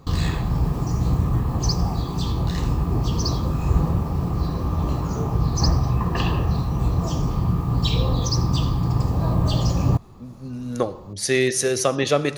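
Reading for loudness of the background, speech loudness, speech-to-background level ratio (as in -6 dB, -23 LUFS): -22.5 LUFS, -22.5 LUFS, 0.0 dB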